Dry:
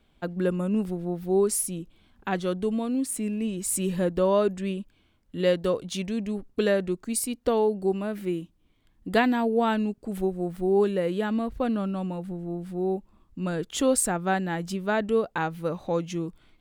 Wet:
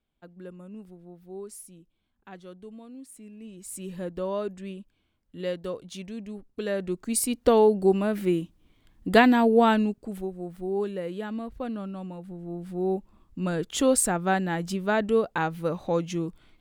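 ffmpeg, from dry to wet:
-af "volume=12dB,afade=t=in:st=3.31:d=0.82:silence=0.354813,afade=t=in:st=6.64:d=0.81:silence=0.237137,afade=t=out:st=9.64:d=0.59:silence=0.281838,afade=t=in:st=12.27:d=0.7:silence=0.421697"

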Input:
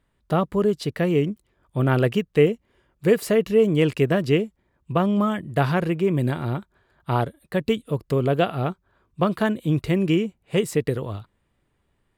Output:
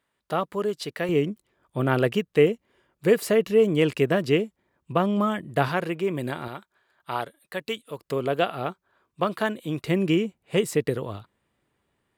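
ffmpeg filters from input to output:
-af "asetnsamples=n=441:p=0,asendcmd='1.09 highpass f 220;5.68 highpass f 460;6.48 highpass f 1100;8.05 highpass f 490;9.87 highpass f 180',highpass=f=640:p=1"

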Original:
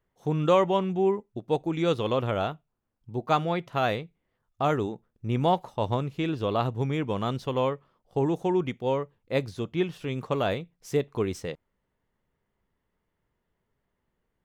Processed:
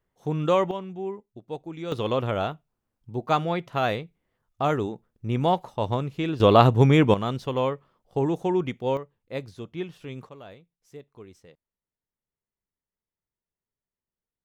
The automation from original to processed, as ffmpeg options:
-af "asetnsamples=n=441:p=0,asendcmd='0.71 volume volume -8.5dB;1.92 volume volume 1dB;6.4 volume volume 11dB;7.14 volume volume 1dB;8.97 volume volume -6dB;10.29 volume volume -18dB',volume=-0.5dB"

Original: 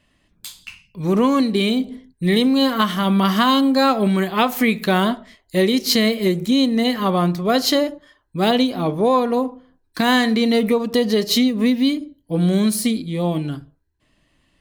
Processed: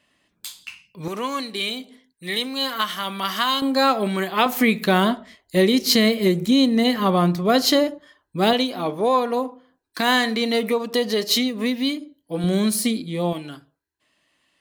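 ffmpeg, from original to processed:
-af "asetnsamples=n=441:p=0,asendcmd='1.08 highpass f 1500;3.62 highpass f 420;4.46 highpass f 98;5.56 highpass f 45;7.88 highpass f 150;8.53 highpass f 480;12.44 highpass f 220;13.33 highpass f 780',highpass=f=360:p=1"

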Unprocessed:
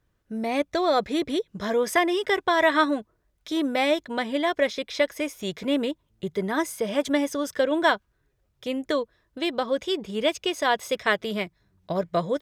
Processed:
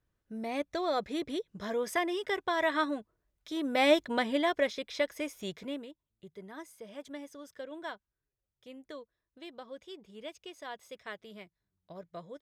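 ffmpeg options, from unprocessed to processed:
-af "volume=-0.5dB,afade=t=in:st=3.62:d=0.3:silence=0.375837,afade=t=out:st=3.92:d=0.85:silence=0.446684,afade=t=out:st=5.45:d=0.4:silence=0.237137"

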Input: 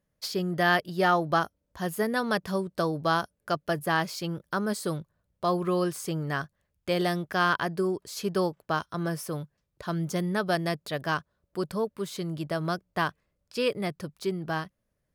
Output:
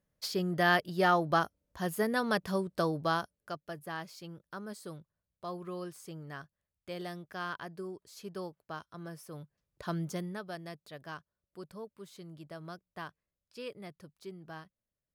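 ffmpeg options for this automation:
-af "volume=7.5dB,afade=t=out:st=2.89:d=0.72:silence=0.281838,afade=t=in:st=9.28:d=0.57:silence=0.298538,afade=t=out:st=9.85:d=0.59:silence=0.251189"

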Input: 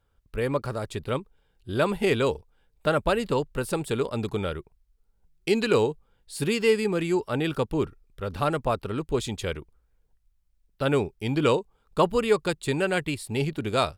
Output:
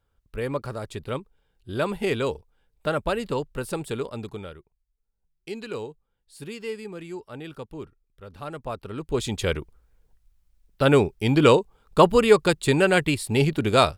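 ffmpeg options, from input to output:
-af "volume=15.5dB,afade=t=out:st=3.85:d=0.73:silence=0.334965,afade=t=in:st=8.42:d=0.55:silence=0.421697,afade=t=in:st=8.97:d=0.57:silence=0.316228"

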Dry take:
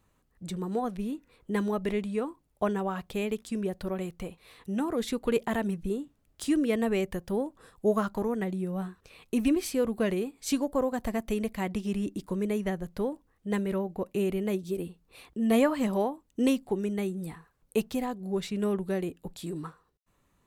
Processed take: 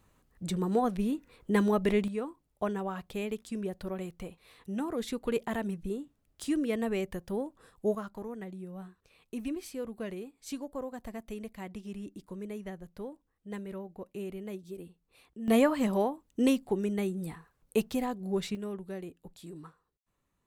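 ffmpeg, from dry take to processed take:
-af "asetnsamples=n=441:p=0,asendcmd='2.08 volume volume -4dB;7.95 volume volume -10.5dB;15.48 volume volume -0.5dB;18.55 volume volume -9.5dB',volume=3dB"

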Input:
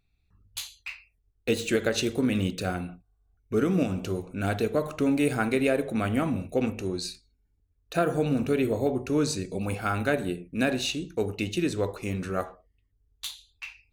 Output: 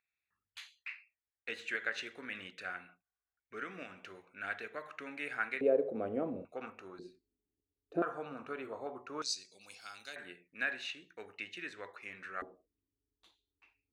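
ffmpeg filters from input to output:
-af "asetnsamples=n=441:p=0,asendcmd='5.61 bandpass f 480;6.45 bandpass f 1300;6.99 bandpass f 350;8.02 bandpass f 1200;9.22 bandpass f 5000;10.16 bandpass f 1800;12.42 bandpass f 320',bandpass=f=1.8k:t=q:w=3:csg=0"

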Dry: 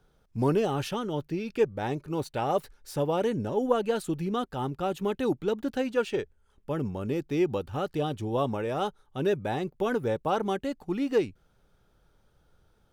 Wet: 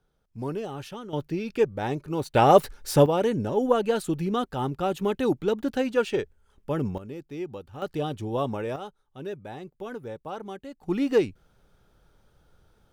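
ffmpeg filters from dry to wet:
-af "asetnsamples=n=441:p=0,asendcmd='1.13 volume volume 2dB;2.35 volume volume 11dB;3.06 volume volume 3dB;6.98 volume volume -8.5dB;7.82 volume volume 0dB;8.76 volume volume -9dB;10.83 volume volume 3.5dB',volume=-7dB"

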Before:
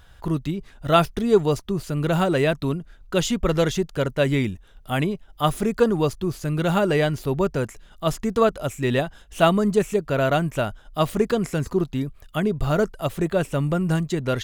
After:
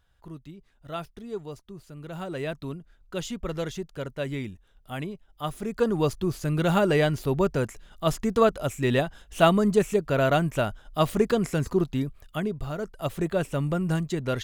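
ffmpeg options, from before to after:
-af "volume=7.5dB,afade=t=in:st=2.08:d=0.43:silence=0.446684,afade=t=in:st=5.6:d=0.53:silence=0.354813,afade=t=out:st=12:d=0.79:silence=0.266073,afade=t=in:st=12.79:d=0.27:silence=0.354813"

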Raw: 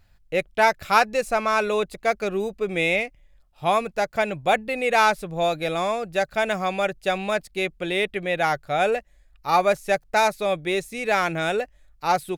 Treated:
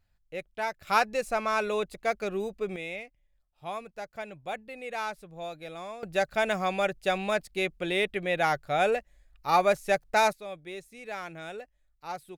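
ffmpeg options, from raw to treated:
-af "asetnsamples=n=441:p=0,asendcmd='0.87 volume volume -6dB;2.76 volume volume -15.5dB;6.03 volume volume -3.5dB;10.33 volume volume -16dB',volume=-13.5dB"

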